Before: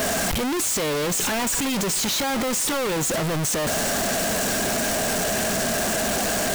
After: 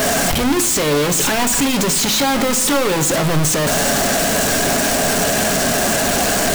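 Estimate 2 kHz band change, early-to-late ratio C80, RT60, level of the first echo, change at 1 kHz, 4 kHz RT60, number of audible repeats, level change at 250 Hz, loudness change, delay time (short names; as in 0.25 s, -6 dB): +7.0 dB, 16.0 dB, 0.90 s, none, +7.5 dB, 0.75 s, none, +7.5 dB, +7.0 dB, none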